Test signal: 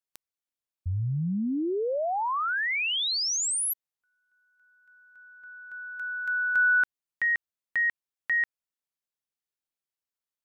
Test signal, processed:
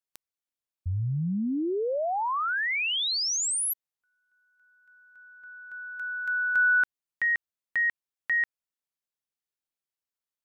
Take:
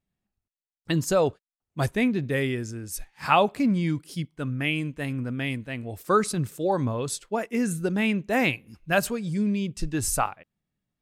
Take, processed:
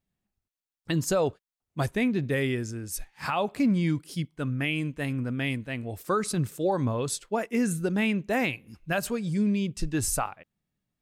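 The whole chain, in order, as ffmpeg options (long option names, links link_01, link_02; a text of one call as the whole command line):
ffmpeg -i in.wav -af "alimiter=limit=-16.5dB:level=0:latency=1:release=170" out.wav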